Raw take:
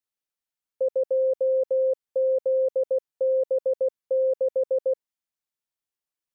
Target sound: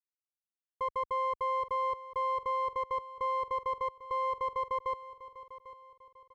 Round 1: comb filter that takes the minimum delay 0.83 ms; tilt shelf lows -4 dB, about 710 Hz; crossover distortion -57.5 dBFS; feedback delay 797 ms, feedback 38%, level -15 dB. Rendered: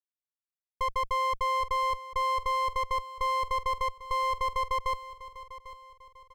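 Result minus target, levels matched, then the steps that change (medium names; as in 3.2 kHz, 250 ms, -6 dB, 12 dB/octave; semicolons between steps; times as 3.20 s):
crossover distortion: distortion +8 dB; 500 Hz band -3.5 dB
add after comb filter that takes the minimum: band-pass filter 460 Hz, Q 0.65; change: crossover distortion -68.5 dBFS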